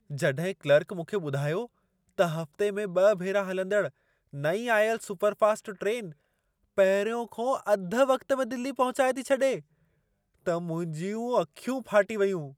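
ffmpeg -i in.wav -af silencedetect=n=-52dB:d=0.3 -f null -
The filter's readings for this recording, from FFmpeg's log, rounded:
silence_start: 1.67
silence_end: 2.09 | silence_duration: 0.42
silence_start: 3.90
silence_end: 4.33 | silence_duration: 0.43
silence_start: 6.13
silence_end: 6.77 | silence_duration: 0.64
silence_start: 9.62
silence_end: 10.46 | silence_duration: 0.84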